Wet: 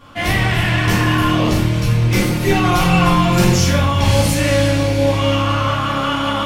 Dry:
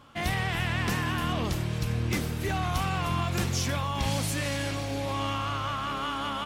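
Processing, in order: 2.15–3.55 s: comb 5.6 ms, depth 75%; simulated room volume 120 m³, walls mixed, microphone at 1.8 m; trim +5 dB

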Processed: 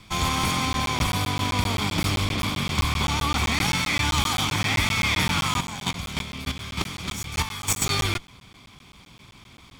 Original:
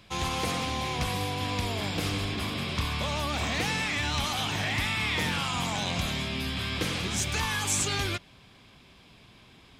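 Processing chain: comb filter that takes the minimum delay 0.88 ms; 5.56–7.82 s: square tremolo 3.3 Hz, depth 65%, duty 15%; crackling interface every 0.13 s, samples 512, zero, from 0.73 s; trim +7 dB

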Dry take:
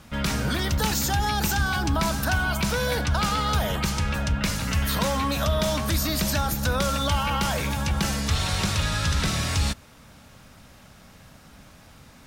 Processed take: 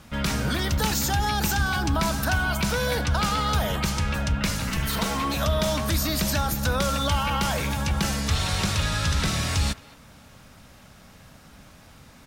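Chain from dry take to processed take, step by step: 4.69–5.34 s: comb filter that takes the minimum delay 4.5 ms; speakerphone echo 220 ms, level -19 dB

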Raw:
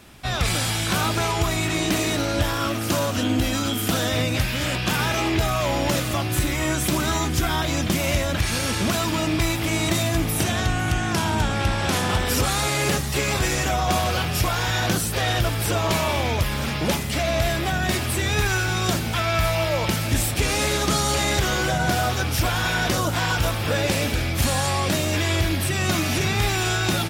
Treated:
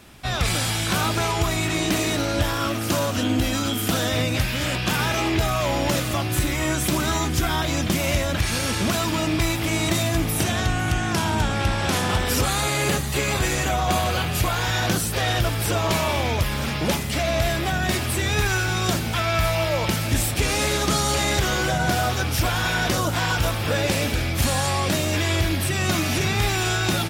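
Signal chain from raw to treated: 12.44–14.63 s: band-stop 5.4 kHz, Q 7.8

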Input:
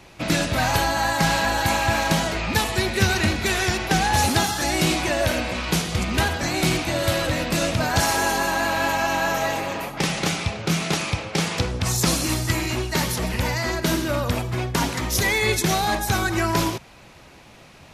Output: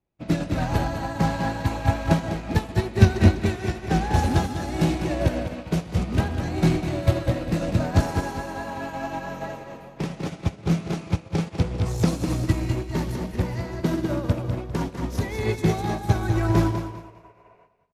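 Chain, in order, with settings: treble shelf 11 kHz -6 dB; spectral replace 16.76–17.63 s, 370–2900 Hz before; tilt shelf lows +7.5 dB, about 880 Hz; feedback delay 200 ms, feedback 50%, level -5 dB; in parallel at -5 dB: hard clipper -16.5 dBFS, distortion -9 dB; on the sum: upward expansion 2.5:1, over -34 dBFS; trim -1 dB

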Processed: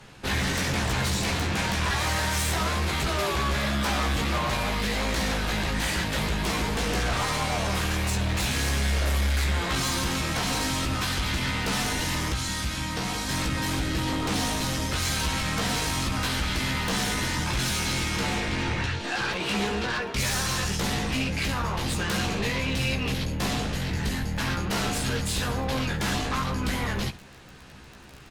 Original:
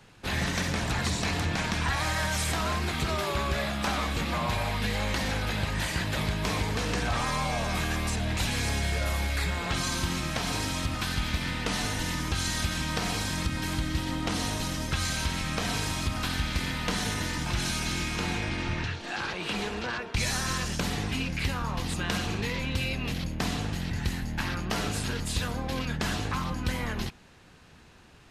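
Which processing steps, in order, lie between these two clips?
crackle 12 per s -38 dBFS; 12.32–13.29 s: feedback comb 63 Hz, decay 0.49 s, harmonics all, mix 60%; sine folder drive 8 dB, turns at -17.5 dBFS; early reflections 15 ms -5 dB, 70 ms -17 dB; trim -6.5 dB

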